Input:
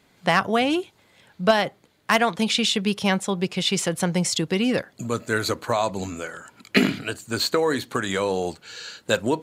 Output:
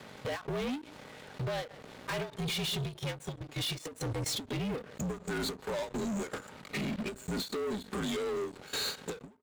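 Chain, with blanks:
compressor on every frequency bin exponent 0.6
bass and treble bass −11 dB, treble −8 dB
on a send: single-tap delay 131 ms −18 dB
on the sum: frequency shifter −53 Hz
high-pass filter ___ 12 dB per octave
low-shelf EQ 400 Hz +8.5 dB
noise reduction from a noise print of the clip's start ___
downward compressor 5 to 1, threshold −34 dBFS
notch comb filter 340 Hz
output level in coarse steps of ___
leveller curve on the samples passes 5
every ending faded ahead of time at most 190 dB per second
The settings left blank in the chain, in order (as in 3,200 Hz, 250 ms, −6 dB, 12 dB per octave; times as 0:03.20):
46 Hz, 14 dB, 22 dB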